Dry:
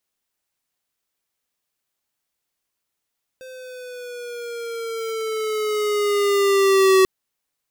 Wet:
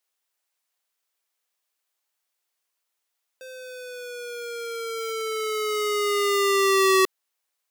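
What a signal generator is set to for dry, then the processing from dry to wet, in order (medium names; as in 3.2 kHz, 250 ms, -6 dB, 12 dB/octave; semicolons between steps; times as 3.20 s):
gliding synth tone square, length 3.64 s, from 519 Hz, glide -5.5 st, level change +25.5 dB, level -13 dB
high-pass 500 Hz 12 dB/octave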